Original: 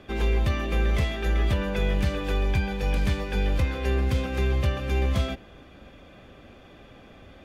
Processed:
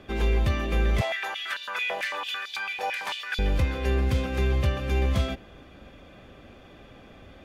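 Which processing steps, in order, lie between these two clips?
1.01–3.39 stepped high-pass 9 Hz 720–3900 Hz

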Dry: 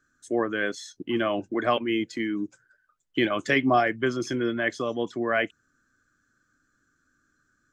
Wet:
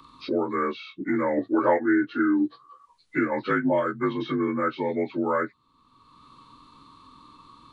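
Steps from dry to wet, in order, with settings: inharmonic rescaling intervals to 84%; spectral gain 1.38–2.85, 250–2000 Hz +9 dB; three-band squash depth 70%

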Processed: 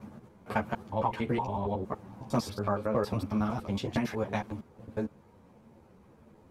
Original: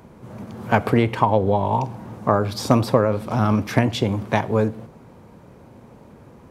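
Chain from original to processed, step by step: slices in reverse order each 92 ms, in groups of 5; ensemble effect; gain -8.5 dB

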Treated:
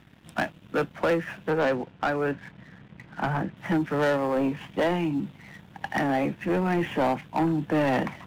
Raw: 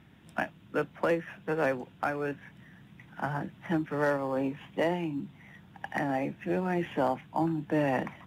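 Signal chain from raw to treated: 1.5–3.57 LPF 2600 Hz; sample leveller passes 2

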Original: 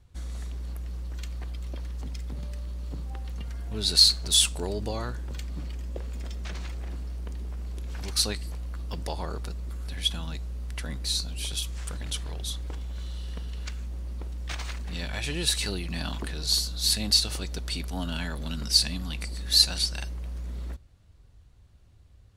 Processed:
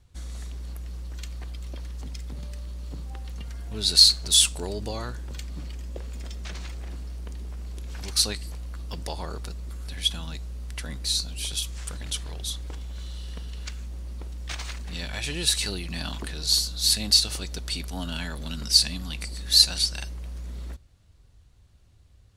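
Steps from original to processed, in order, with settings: bell 7200 Hz +4.5 dB 2.7 oct; gain -1 dB

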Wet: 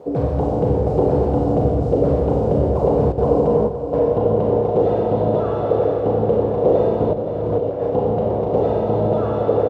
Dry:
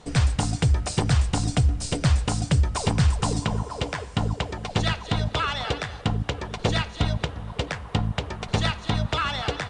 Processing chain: Schroeder reverb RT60 2.2 s, combs from 28 ms, DRR -4 dB; added noise white -43 dBFS; overdrive pedal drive 19 dB, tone 2500 Hz, clips at -3.5 dBFS; high shelf 7100 Hz -8 dB; 3.12–3.99 gate with hold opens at -8 dBFS; HPF 59 Hz; 7.13–7.82 negative-ratio compressor -22 dBFS, ratio -0.5; EQ curve 220 Hz 0 dB, 490 Hz +10 dB, 1800 Hz -29 dB; feedback echo 0.521 s, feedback 51%, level -11 dB; gain -1.5 dB

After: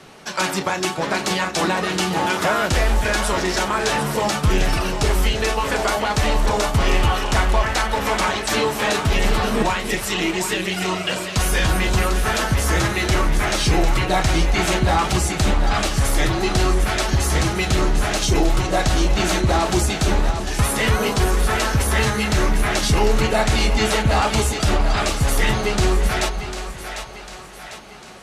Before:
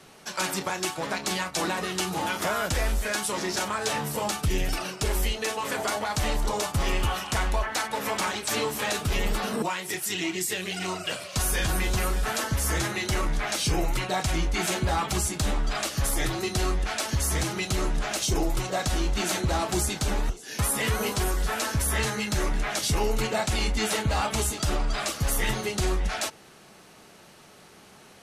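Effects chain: high shelf 7700 Hz -10.5 dB; on a send: split-band echo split 530 Hz, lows 0.319 s, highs 0.749 s, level -8.5 dB; on the sum: gain +8 dB

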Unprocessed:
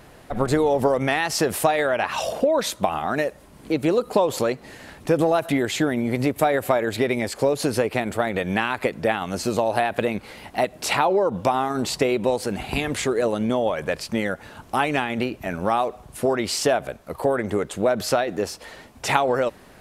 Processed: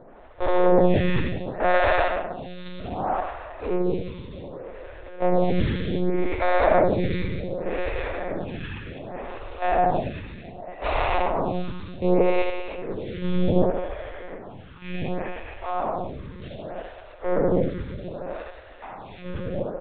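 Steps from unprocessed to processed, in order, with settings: stepped spectrum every 0.4 s; in parallel at -7.5 dB: hard clip -26.5 dBFS, distortion -7 dB; on the sum: gate -23 dBFS, range -14 dB; on a send: reverse bouncing-ball echo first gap 80 ms, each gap 1.3×, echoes 5; on the sum: monotone LPC vocoder at 8 kHz 180 Hz; photocell phaser 0.66 Hz; gain +4.5 dB

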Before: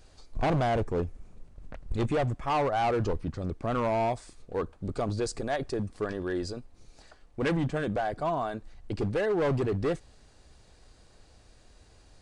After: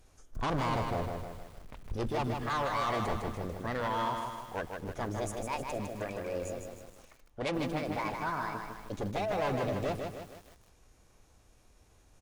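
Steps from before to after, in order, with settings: echo 0.258 s -20 dB; formant shift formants +6 st; lo-fi delay 0.155 s, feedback 55%, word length 8-bit, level -4.5 dB; gain -6 dB

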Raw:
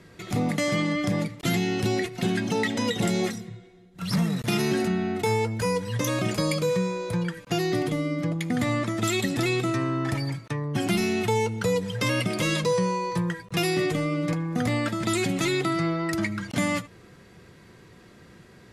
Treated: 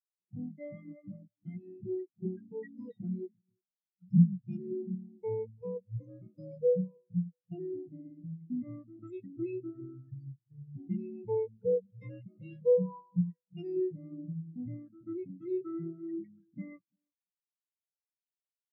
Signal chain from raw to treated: 0.76–2.2 notches 60/120/180/240/300 Hz; dark delay 0.341 s, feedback 35%, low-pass 2100 Hz, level -11 dB; spectral expander 4:1

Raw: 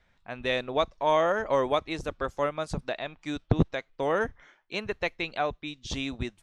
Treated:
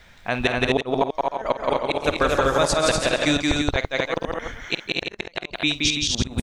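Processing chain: high shelf 2900 Hz +8.5 dB; compressor 1.5:1, threshold -35 dBFS, peak gain reduction 7 dB; flipped gate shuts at -21 dBFS, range -38 dB; tapped delay 49/173/224/246/334 ms -14.5/-3/-9/-3.5/-7.5 dB; maximiser +22.5 dB; 1.1–3.37 warbling echo 0.136 s, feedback 62%, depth 98 cents, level -11 dB; gain -7.5 dB

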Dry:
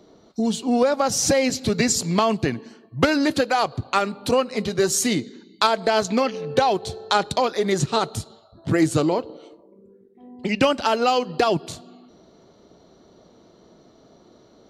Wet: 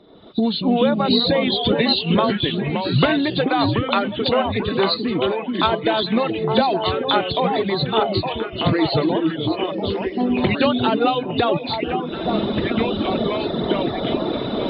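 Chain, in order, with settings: nonlinear frequency compression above 3400 Hz 4:1; recorder AGC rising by 38 dB/s; 4.94–5.63 bell 3900 Hz -11 dB 2.5 oct; echoes that change speed 0.158 s, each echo -3 st, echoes 2, each echo -6 dB; reverb removal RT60 1 s; on a send: delay with a stepping band-pass 0.43 s, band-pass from 280 Hz, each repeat 1.4 oct, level -1 dB

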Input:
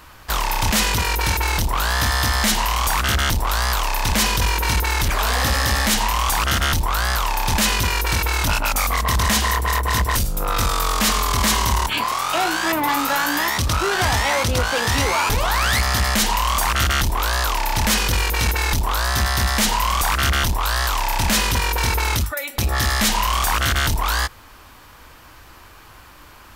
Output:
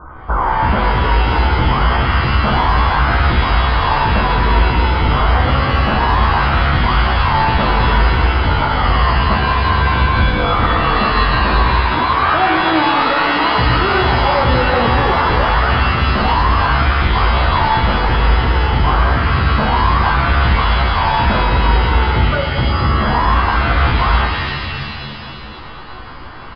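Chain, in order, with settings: Chebyshev low-pass 1500 Hz, order 8; doubler 16 ms -3.5 dB; de-hum 103.5 Hz, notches 37; maximiser +17.5 dB; shimmer reverb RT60 2 s, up +7 st, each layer -2 dB, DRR 3.5 dB; gain -7.5 dB

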